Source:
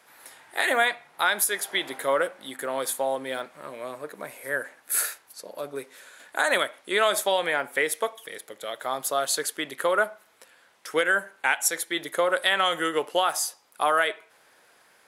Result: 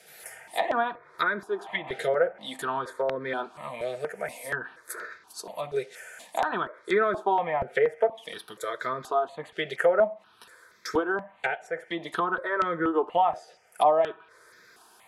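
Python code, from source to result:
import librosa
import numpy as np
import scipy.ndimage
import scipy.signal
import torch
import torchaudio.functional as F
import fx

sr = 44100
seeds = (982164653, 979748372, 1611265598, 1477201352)

y = fx.env_lowpass_down(x, sr, base_hz=980.0, full_db=-23.0)
y = fx.notch_comb(y, sr, f0_hz=280.0)
y = fx.phaser_held(y, sr, hz=4.2, low_hz=280.0, high_hz=2900.0)
y = y * librosa.db_to_amplitude(7.5)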